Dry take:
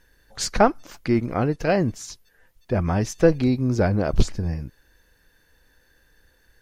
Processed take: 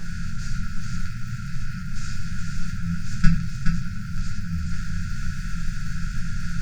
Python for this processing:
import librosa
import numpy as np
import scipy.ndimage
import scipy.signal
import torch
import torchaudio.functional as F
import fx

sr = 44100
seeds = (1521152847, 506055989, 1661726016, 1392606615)

y = fx.bin_compress(x, sr, power=0.2)
y = scipy.signal.sosfilt(scipy.signal.butter(2, 8600.0, 'lowpass', fs=sr, output='sos'), y)
y = fx.peak_eq(y, sr, hz=270.0, db=12.0, octaves=2.8)
y = fx.hum_notches(y, sr, base_hz=50, count=4)
y = fx.level_steps(y, sr, step_db=24)
y = fx.dmg_crackle(y, sr, seeds[0], per_s=100.0, level_db=-35.0)
y = fx.brickwall_bandstop(y, sr, low_hz=200.0, high_hz=1300.0)
y = y + 10.0 ** (-5.0 / 20.0) * np.pad(y, (int(421 * sr / 1000.0), 0))[:len(y)]
y = fx.room_shoebox(y, sr, seeds[1], volume_m3=31.0, walls='mixed', distance_m=0.76)
y = y * librosa.db_to_amplitude(-6.5)